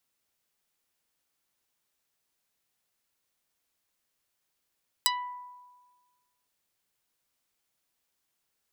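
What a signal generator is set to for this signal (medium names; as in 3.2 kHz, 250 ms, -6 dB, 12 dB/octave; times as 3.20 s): plucked string B5, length 1.41 s, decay 1.42 s, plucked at 0.44, dark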